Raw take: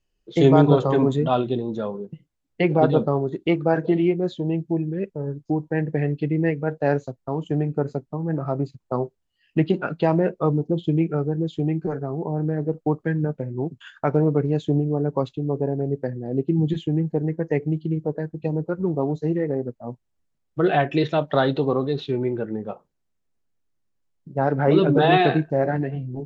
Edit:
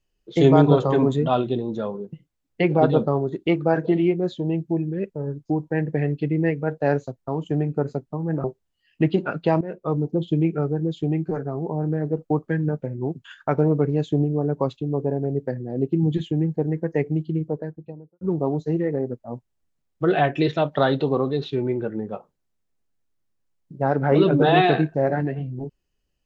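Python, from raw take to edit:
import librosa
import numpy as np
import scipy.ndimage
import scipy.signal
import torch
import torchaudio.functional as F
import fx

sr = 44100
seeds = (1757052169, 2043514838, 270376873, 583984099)

y = fx.studio_fade_out(x, sr, start_s=17.88, length_s=0.89)
y = fx.edit(y, sr, fx.cut(start_s=8.44, length_s=0.56),
    fx.fade_in_from(start_s=10.17, length_s=0.67, curve='qsin', floor_db=-17.5), tone=tone)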